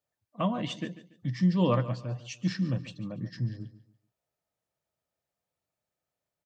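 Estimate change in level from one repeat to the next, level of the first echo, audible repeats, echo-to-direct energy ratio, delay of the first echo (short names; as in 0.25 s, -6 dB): -10.5 dB, -15.5 dB, 2, -15.0 dB, 0.143 s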